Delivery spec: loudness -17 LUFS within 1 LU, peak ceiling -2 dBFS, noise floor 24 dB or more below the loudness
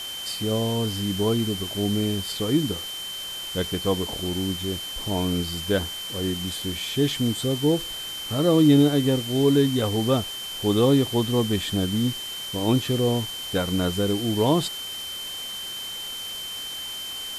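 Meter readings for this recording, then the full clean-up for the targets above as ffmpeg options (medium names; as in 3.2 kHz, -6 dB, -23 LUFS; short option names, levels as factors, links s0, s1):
steady tone 3.1 kHz; tone level -32 dBFS; noise floor -34 dBFS; noise floor target -49 dBFS; loudness -24.5 LUFS; peak level -8.0 dBFS; loudness target -17.0 LUFS
-> -af "bandreject=f=3100:w=30"
-af "afftdn=nr=15:nf=-34"
-af "volume=2.37,alimiter=limit=0.794:level=0:latency=1"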